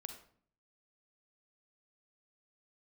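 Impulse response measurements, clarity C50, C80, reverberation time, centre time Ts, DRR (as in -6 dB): 7.0 dB, 11.0 dB, 0.55 s, 17 ms, 5.5 dB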